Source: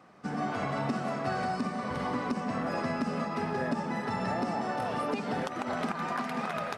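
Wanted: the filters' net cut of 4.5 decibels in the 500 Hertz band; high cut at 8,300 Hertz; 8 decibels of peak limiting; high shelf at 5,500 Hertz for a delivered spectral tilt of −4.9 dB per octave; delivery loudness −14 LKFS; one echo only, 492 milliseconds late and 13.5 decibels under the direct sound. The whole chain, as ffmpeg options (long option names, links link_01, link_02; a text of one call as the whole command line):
ffmpeg -i in.wav -af "lowpass=8300,equalizer=frequency=500:width_type=o:gain=-6,highshelf=frequency=5500:gain=-4.5,alimiter=level_in=4.5dB:limit=-24dB:level=0:latency=1,volume=-4.5dB,aecho=1:1:492:0.211,volume=23dB" out.wav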